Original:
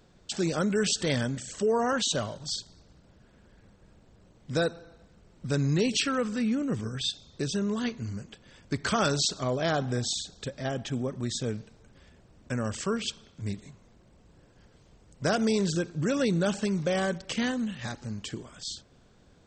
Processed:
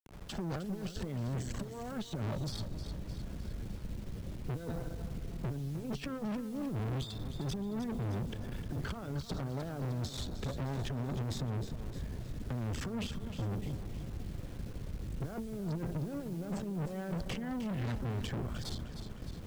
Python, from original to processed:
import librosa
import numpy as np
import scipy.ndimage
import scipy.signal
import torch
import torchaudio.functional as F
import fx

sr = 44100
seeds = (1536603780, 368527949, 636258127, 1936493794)

y = fx.fade_in_head(x, sr, length_s=0.63)
y = fx.spec_gate(y, sr, threshold_db=-20, keep='strong')
y = fx.over_compress(y, sr, threshold_db=-34.0, ratio=-0.5)
y = fx.riaa(y, sr, side='playback')
y = fx.tube_stage(y, sr, drive_db=35.0, bias=0.75)
y = fx.quant_dither(y, sr, seeds[0], bits=10, dither='none')
y = fx.echo_feedback(y, sr, ms=307, feedback_pct=45, wet_db=-12.0)
y = fx.band_squash(y, sr, depth_pct=40)
y = y * librosa.db_to_amplitude(1.0)